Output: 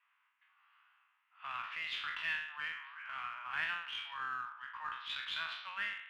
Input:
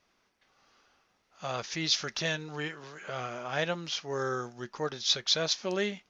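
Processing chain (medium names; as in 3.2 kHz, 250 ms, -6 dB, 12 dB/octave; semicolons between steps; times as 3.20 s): spectral sustain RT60 0.71 s; elliptic band-pass 1–2.9 kHz, stop band 50 dB; in parallel at -10 dB: one-sided clip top -41 dBFS; on the sum: trim -5 dB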